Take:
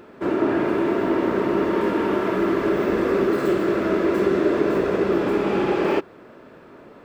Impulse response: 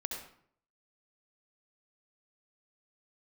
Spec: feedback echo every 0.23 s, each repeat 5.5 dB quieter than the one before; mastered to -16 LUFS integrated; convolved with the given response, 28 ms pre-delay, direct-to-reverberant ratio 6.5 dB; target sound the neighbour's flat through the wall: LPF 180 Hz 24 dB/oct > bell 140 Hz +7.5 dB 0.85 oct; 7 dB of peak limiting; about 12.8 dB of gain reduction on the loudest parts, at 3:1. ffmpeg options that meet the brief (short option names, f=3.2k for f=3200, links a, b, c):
-filter_complex "[0:a]acompressor=threshold=-33dB:ratio=3,alimiter=level_in=3dB:limit=-24dB:level=0:latency=1,volume=-3dB,aecho=1:1:230|460|690|920|1150|1380|1610:0.531|0.281|0.149|0.079|0.0419|0.0222|0.0118,asplit=2[a][b];[1:a]atrim=start_sample=2205,adelay=28[c];[b][c]afir=irnorm=-1:irlink=0,volume=-7.5dB[d];[a][d]amix=inputs=2:normalize=0,lowpass=f=180:w=0.5412,lowpass=f=180:w=1.3066,equalizer=f=140:t=o:w=0.85:g=7.5,volume=29dB"